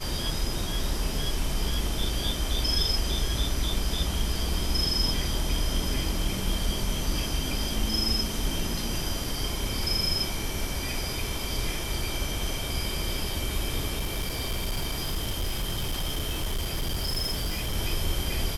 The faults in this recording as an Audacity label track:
13.970000	17.760000	clipped -24.5 dBFS

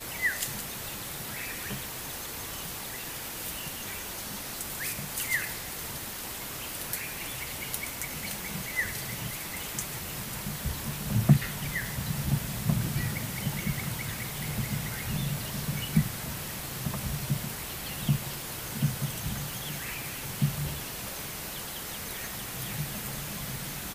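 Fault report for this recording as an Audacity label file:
22.270000	22.270000	pop

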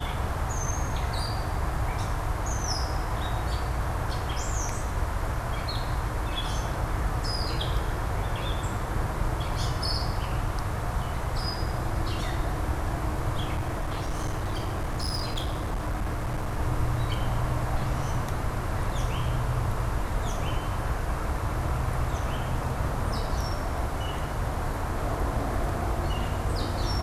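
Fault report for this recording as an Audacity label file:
13.550000	16.580000	clipped -25 dBFS

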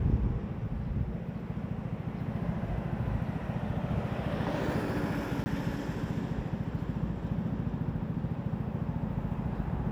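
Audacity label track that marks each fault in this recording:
5.440000	5.460000	gap 20 ms

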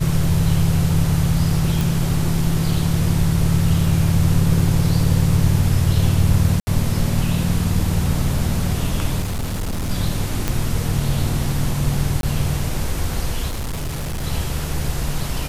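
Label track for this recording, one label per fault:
1.810000	1.810000	pop
6.600000	6.670000	gap 70 ms
9.210000	9.910000	clipped -20 dBFS
10.480000	10.480000	pop -5 dBFS
12.210000	12.230000	gap 22 ms
13.480000	14.240000	clipped -21.5 dBFS

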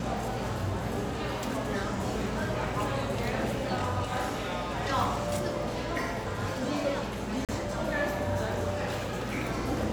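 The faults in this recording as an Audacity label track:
7.450000	7.490000	gap 37 ms

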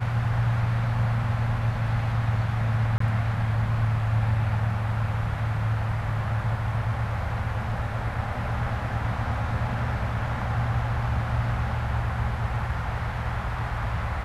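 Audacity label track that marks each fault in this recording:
2.980000	3.000000	gap 24 ms

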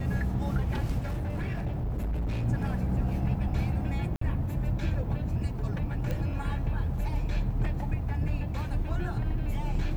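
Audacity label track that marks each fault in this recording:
1.030000	2.450000	clipped -27 dBFS
4.160000	4.210000	gap 54 ms
6.110000	6.110000	pop -21 dBFS

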